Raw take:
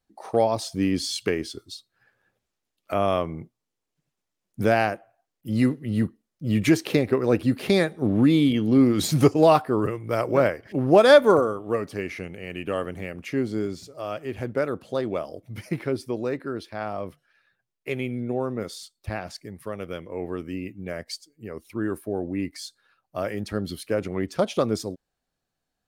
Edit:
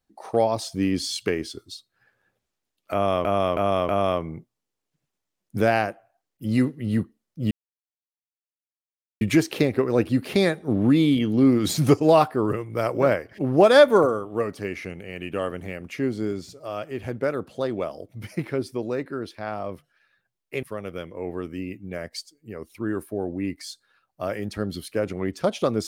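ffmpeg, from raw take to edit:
-filter_complex "[0:a]asplit=6[a][b][c][d][e][f];[a]atrim=end=3.252[g];[b]atrim=start=2.928:end=3.252[h];[c]atrim=start=2.928:end=3.252[i];[d]atrim=start=2.928:end=6.55,asetpts=PTS-STARTPTS,afade=t=out:st=3.618:d=0.004:c=hsin,apad=pad_dur=1.7[j];[e]atrim=start=6.55:end=17.972,asetpts=PTS-STARTPTS,afade=t=in:d=0.004:c=hsin[k];[f]atrim=start=19.578[l];[g][h]acrossfade=d=0.004:c1=hsin:c2=hsin[m];[m][i]acrossfade=d=0.004:c1=hsin:c2=hsin[n];[j][k]concat=n=2:v=0:a=1[o];[n][o]acrossfade=d=0.004:c1=hsin:c2=hsin[p];[p][l]acrossfade=d=0.004:c1=hsin:c2=hsin"

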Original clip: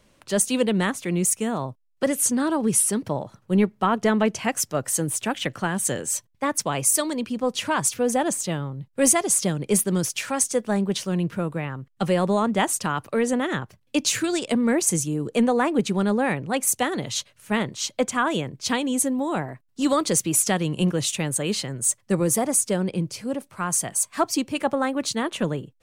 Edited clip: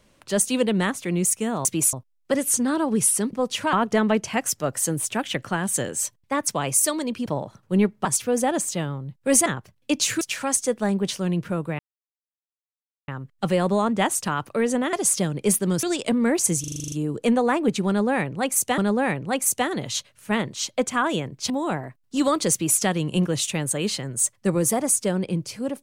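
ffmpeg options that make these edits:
-filter_complex "[0:a]asplit=22[a][b][c][d][e][f][g][h][i][j][k][l][m][n][o][p][q][r][s][t][u][v];[a]atrim=end=1.652[w];[b]atrim=start=20.168:end=20.452[x];[c]atrim=start=1.648:end=3.052[y];[d]atrim=start=7.368:end=7.772[z];[e]atrim=start=3.838:end=7.372[aa];[f]atrim=start=3.048:end=3.842[ab];[g]atrim=start=7.768:end=9.182[ac];[h]atrim=start=13.508:end=14.262[ad];[i]atrim=start=10.078:end=11.66,asetpts=PTS-STARTPTS,afade=t=out:st=1.578:d=0.004:c=hsin,apad=pad_dur=1.29[ae];[j]atrim=start=11.66:end=13.512,asetpts=PTS-STARTPTS,afade=t=in:d=0.004:c=hsin[af];[k]atrim=start=9.178:end=10.082[ag];[l]atrim=start=14.258:end=15.072[ah];[m]atrim=start=15.028:end=15.072[ai];[n]atrim=start=15.028:end=15.072[aj];[o]atrim=start=15.028:end=15.072[ak];[p]atrim=start=15.028:end=15.072[al];[q]atrim=start=15.028:end=15.072[am];[r]atrim=start=15.028:end=15.072[an];[s]atrim=start=15.028:end=15.072[ao];[t]atrim=start=15.028:end=16.892[ap];[u]atrim=start=15.988:end=18.712[aq];[v]atrim=start=19.148[ar];[w][x]acrossfade=d=0.004:c1=hsin:c2=hsin[as];[as][y]acrossfade=d=0.004:c1=hsin:c2=hsin[at];[at][z]acrossfade=d=0.004:c1=hsin:c2=hsin[au];[au][aa]acrossfade=d=0.004:c1=hsin:c2=hsin[av];[av][ab]acrossfade=d=0.004:c1=hsin:c2=hsin[aw];[aw][ac]acrossfade=d=0.004:c1=hsin:c2=hsin[ax];[ax][ad]acrossfade=d=0.004:c1=hsin:c2=hsin[ay];[ae][af]concat=n=2:v=0:a=1[az];[ay][az]acrossfade=d=0.004:c1=hsin:c2=hsin[ba];[ba][ag]acrossfade=d=0.004:c1=hsin:c2=hsin[bb];[bb][ah]acrossfade=d=0.004:c1=hsin:c2=hsin[bc];[bc][ai]acrossfade=d=0.004:c1=hsin:c2=hsin[bd];[bd][aj]acrossfade=d=0.004:c1=hsin:c2=hsin[be];[be][ak]acrossfade=d=0.004:c1=hsin:c2=hsin[bf];[bf][al]acrossfade=d=0.004:c1=hsin:c2=hsin[bg];[bg][am]acrossfade=d=0.004:c1=hsin:c2=hsin[bh];[bh][an]acrossfade=d=0.004:c1=hsin:c2=hsin[bi];[bi][ao]acrossfade=d=0.004:c1=hsin:c2=hsin[bj];[bj][ap]acrossfade=d=0.004:c1=hsin:c2=hsin[bk];[bk][aq]acrossfade=d=0.004:c1=hsin:c2=hsin[bl];[bl][ar]acrossfade=d=0.004:c1=hsin:c2=hsin"

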